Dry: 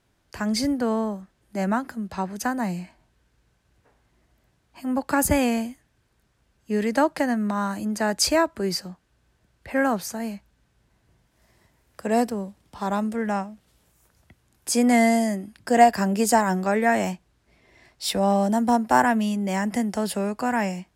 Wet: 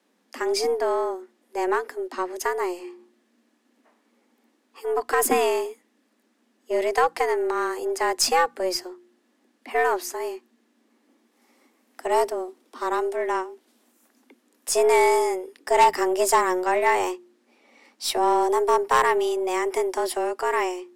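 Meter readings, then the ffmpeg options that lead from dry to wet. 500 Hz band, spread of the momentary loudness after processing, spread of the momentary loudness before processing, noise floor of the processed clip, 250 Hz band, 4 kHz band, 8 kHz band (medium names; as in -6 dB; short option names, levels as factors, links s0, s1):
+3.5 dB, 13 LU, 13 LU, -68 dBFS, -10.5 dB, +0.5 dB, 0.0 dB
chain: -af "afreqshift=180,aeval=exprs='0.631*(cos(1*acos(clip(val(0)/0.631,-1,1)))-cos(1*PI/2))+0.112*(cos(5*acos(clip(val(0)/0.631,-1,1)))-cos(5*PI/2))+0.0251*(cos(6*acos(clip(val(0)/0.631,-1,1)))-cos(6*PI/2))+0.0398*(cos(7*acos(clip(val(0)/0.631,-1,1)))-cos(7*PI/2))+0.0398*(cos(8*acos(clip(val(0)/0.631,-1,1)))-cos(8*PI/2))':c=same,bandreject=f=59.23:t=h:w=4,bandreject=f=118.46:t=h:w=4,bandreject=f=177.69:t=h:w=4,bandreject=f=236.92:t=h:w=4,bandreject=f=296.15:t=h:w=4,bandreject=f=355.38:t=h:w=4,volume=0.708"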